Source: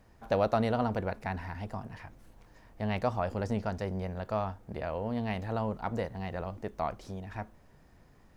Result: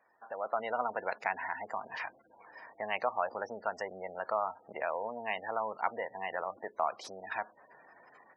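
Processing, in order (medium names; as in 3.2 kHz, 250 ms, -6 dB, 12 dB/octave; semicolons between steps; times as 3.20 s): spectral gate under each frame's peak -25 dB strong; compression 2:1, threshold -43 dBFS, peak gain reduction 11.5 dB; high-pass 830 Hz 12 dB/octave; level rider gain up to 13.5 dB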